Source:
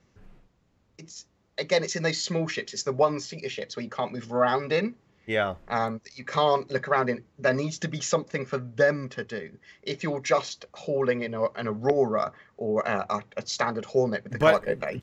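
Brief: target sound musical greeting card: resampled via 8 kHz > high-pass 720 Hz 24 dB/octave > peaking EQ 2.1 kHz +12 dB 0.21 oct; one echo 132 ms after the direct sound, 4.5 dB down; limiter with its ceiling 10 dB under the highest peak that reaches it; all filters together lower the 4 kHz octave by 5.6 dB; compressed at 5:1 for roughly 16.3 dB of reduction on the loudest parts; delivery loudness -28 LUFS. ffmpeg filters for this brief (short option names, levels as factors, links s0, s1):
-af "equalizer=f=4000:t=o:g=-7.5,acompressor=threshold=0.0224:ratio=5,alimiter=level_in=1.68:limit=0.0631:level=0:latency=1,volume=0.596,aecho=1:1:132:0.596,aresample=8000,aresample=44100,highpass=f=720:w=0.5412,highpass=f=720:w=1.3066,equalizer=f=2100:t=o:w=0.21:g=12,volume=4.47"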